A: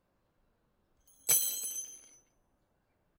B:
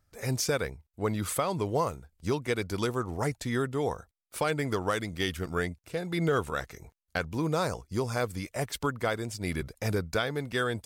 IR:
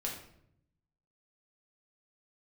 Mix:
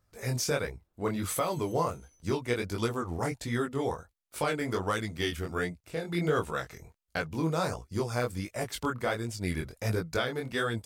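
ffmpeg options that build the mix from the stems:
-filter_complex "[0:a]volume=-6dB[a];[1:a]flanger=delay=17.5:depth=7.4:speed=1.4,volume=2dB,asplit=2[b][c];[c]apad=whole_len=140402[d];[a][d]sidechaincompress=threshold=-43dB:ratio=8:attack=16:release=100[e];[e][b]amix=inputs=2:normalize=0"

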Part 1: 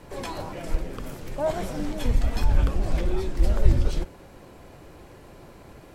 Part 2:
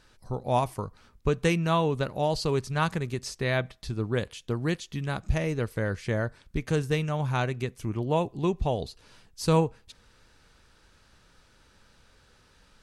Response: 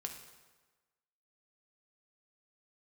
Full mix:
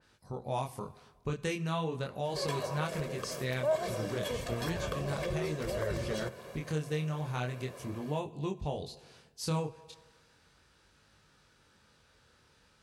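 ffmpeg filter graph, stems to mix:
-filter_complex "[0:a]highpass=210,aecho=1:1:1.8:0.72,adelay=2250,volume=0.5dB[a];[1:a]highpass=64,flanger=delay=20:depth=6.3:speed=0.36,adynamicequalizer=threshold=0.00562:dfrequency=3000:dqfactor=0.7:tfrequency=3000:tqfactor=0.7:attack=5:release=100:ratio=0.375:range=2:mode=boostabove:tftype=highshelf,volume=-3.5dB,asplit=2[b][c];[c]volume=-7.5dB[d];[2:a]atrim=start_sample=2205[e];[d][e]afir=irnorm=-1:irlink=0[f];[a][b][f]amix=inputs=3:normalize=0,acompressor=threshold=-39dB:ratio=1.5"

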